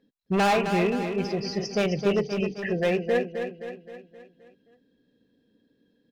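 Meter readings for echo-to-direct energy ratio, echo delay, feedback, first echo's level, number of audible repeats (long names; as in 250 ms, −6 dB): −6.0 dB, 262 ms, 51%, −7.5 dB, 5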